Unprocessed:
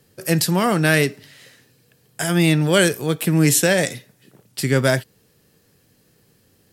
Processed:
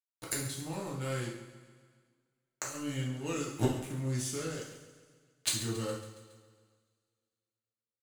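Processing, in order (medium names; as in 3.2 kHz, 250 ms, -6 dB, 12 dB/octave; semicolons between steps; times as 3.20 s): dynamic bell 2 kHz, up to -6 dB, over -34 dBFS, Q 1.4; wide varispeed 0.838×; wow and flutter 28 cents; crossover distortion -30 dBFS; inverted gate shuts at -16 dBFS, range -24 dB; feedback delay 138 ms, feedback 59%, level -15 dB; two-slope reverb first 0.58 s, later 2.6 s, from -27 dB, DRR -4.5 dB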